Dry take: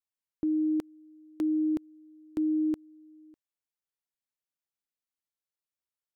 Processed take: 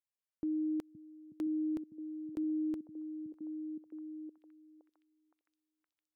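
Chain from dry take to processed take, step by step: repeats whose band climbs or falls 517 ms, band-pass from 150 Hz, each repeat 0.7 oct, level -4.5 dB; trim -7 dB

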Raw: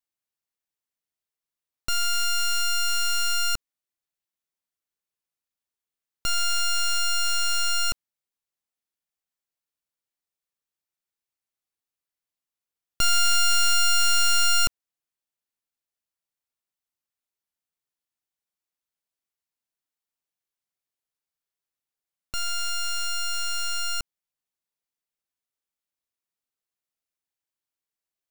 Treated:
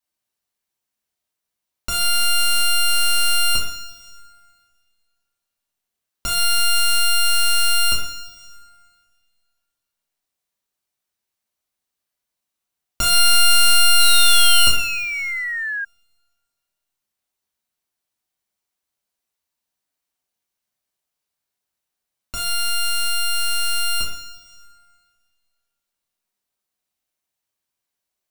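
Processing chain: two-slope reverb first 0.56 s, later 2 s, from -16 dB, DRR -4.5 dB; painted sound fall, 13.99–15.85 s, 1.6–4.1 kHz -27 dBFS; trim +2 dB

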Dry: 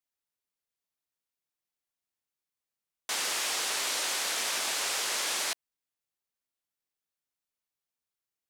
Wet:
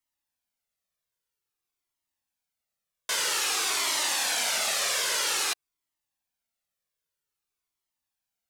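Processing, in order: Shepard-style flanger falling 0.51 Hz; trim +8 dB

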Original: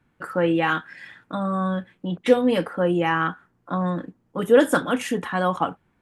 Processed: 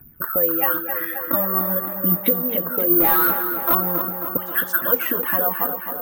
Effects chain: resonances exaggerated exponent 1.5; 4.37–4.82 s: elliptic high-pass 1.1 kHz; compression 5:1, threshold -33 dBFS, peak gain reduction 19.5 dB; phaser 0.45 Hz, delay 4.5 ms, feedback 58%; 3.00–3.75 s: overdrive pedal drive 26 dB, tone 1.4 kHz, clips at -21 dBFS; distance through air 93 m; tape echo 268 ms, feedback 78%, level -7 dB, low-pass 3 kHz; careless resampling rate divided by 3×, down none, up zero stuff; trim +8 dB

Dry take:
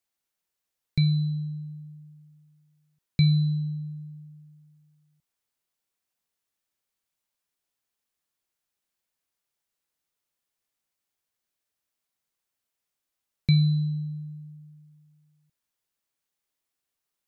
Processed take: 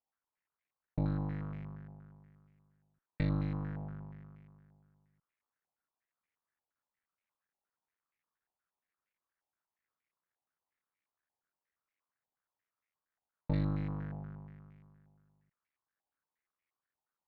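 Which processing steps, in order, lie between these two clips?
cycle switcher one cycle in 3, muted; one-sided clip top -34 dBFS, bottom -17 dBFS; step-sequenced low-pass 8.5 Hz 830–2200 Hz; trim -5.5 dB

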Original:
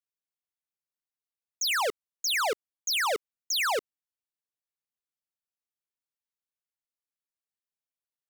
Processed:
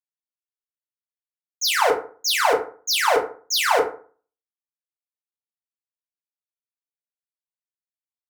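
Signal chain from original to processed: local Wiener filter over 9 samples; FDN reverb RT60 0.59 s, low-frequency decay 1.1×, high-frequency decay 0.45×, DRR -1.5 dB; three bands expanded up and down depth 100%; trim +4 dB

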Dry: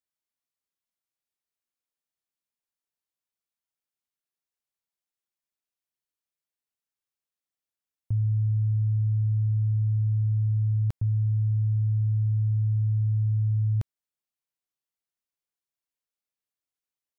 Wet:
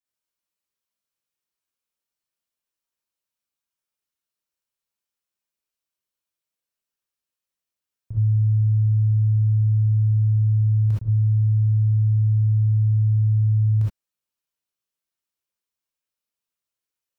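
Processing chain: gated-style reverb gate 90 ms rising, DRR -7 dB; trim -4.5 dB

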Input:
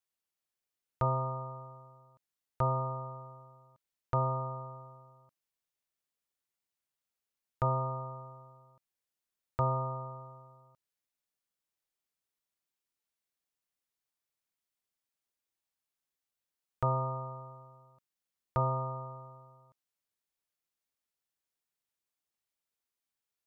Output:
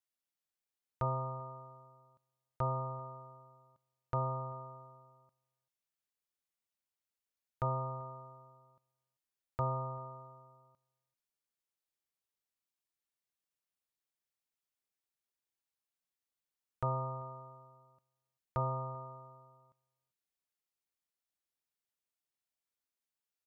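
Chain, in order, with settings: echo from a far wall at 67 m, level -27 dB; trim -4.5 dB

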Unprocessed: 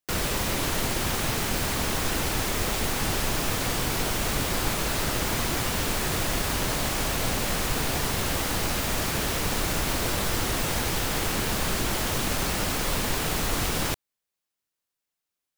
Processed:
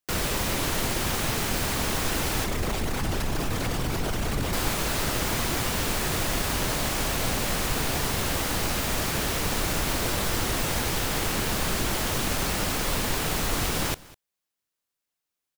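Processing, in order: 2.44–4.53 s: resonances exaggerated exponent 1.5; delay 201 ms -21.5 dB

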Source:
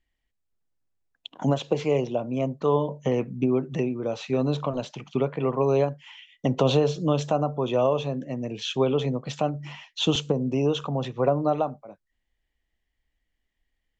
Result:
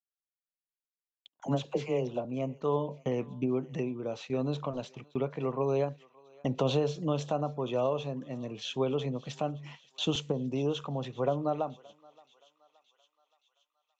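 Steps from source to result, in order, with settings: gate -39 dBFS, range -38 dB; 1.40–2.25 s: phase dispersion lows, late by 45 ms, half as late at 580 Hz; on a send: thinning echo 572 ms, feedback 67%, high-pass 960 Hz, level -21 dB; on the sum: trim -7 dB

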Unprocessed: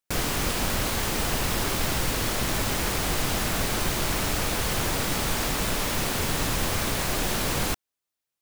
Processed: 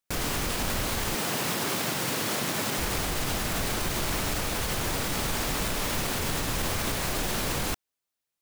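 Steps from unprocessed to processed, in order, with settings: 1.15–2.78 s: high-pass 130 Hz 24 dB/octave; peak limiter -19 dBFS, peak gain reduction 5.5 dB

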